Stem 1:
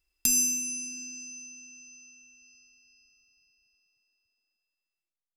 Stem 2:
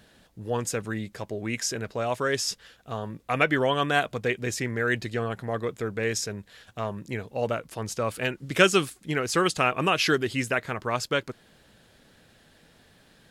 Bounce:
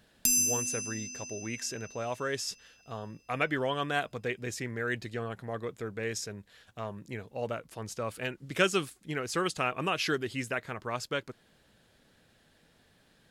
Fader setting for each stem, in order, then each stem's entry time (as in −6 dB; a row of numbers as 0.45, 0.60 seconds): −1.5, −7.0 decibels; 0.00, 0.00 seconds